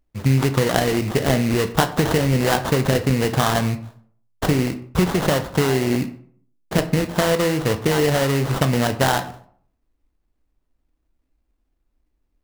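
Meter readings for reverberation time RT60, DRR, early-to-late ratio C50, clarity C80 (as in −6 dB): 0.55 s, 9.5 dB, 14.0 dB, 17.0 dB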